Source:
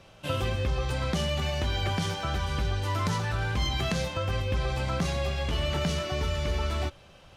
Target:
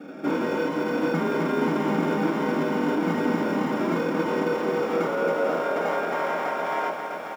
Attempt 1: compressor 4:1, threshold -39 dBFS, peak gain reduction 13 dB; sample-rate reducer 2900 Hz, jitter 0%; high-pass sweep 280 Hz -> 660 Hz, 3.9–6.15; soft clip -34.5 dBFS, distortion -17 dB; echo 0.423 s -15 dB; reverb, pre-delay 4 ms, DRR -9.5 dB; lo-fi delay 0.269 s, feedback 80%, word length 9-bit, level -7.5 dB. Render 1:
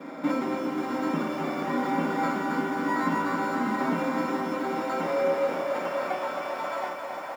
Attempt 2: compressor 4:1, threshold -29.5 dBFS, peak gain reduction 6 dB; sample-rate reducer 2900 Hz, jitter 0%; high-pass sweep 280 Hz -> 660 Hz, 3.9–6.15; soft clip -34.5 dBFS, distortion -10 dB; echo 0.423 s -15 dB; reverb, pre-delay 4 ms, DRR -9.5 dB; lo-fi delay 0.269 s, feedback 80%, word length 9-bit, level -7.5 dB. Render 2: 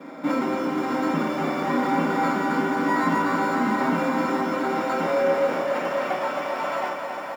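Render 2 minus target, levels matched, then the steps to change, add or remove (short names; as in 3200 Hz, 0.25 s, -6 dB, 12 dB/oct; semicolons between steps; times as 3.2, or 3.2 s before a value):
sample-rate reducer: distortion -4 dB
change: sample-rate reducer 1000 Hz, jitter 0%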